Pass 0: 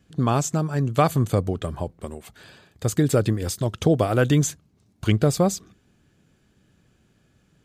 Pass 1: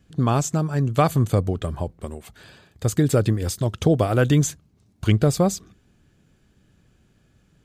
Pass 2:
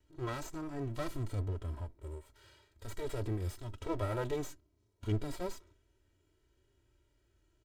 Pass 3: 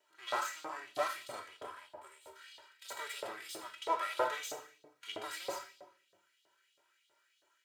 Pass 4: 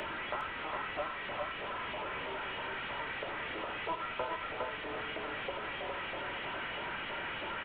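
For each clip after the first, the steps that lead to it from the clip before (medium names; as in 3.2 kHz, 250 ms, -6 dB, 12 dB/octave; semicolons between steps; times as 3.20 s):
bass shelf 70 Hz +8.5 dB
comb filter that takes the minimum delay 2.1 ms; harmonic-percussive split percussive -16 dB; comb 3.1 ms, depth 64%; trim -9 dB
reverberation RT60 1.0 s, pre-delay 5 ms, DRR 1 dB; LFO high-pass saw up 3.1 Hz 620–3900 Hz; trim +3 dB
one-bit delta coder 16 kbps, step -35 dBFS; delay 409 ms -3 dB; three bands compressed up and down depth 70%; trim -1 dB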